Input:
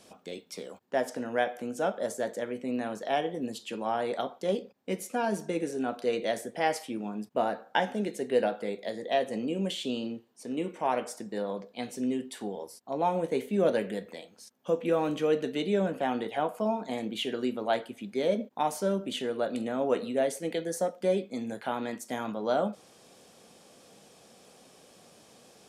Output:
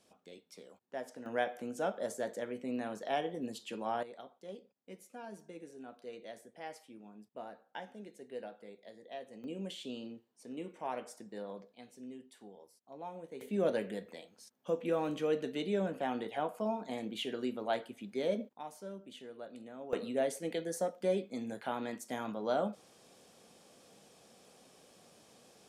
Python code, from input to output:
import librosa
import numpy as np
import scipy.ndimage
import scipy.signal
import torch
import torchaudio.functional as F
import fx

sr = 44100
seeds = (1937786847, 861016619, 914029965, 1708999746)

y = fx.gain(x, sr, db=fx.steps((0.0, -13.0), (1.26, -5.5), (4.03, -18.0), (9.44, -10.5), (11.75, -17.5), (13.41, -6.0), (18.53, -17.0), (19.93, -5.0)))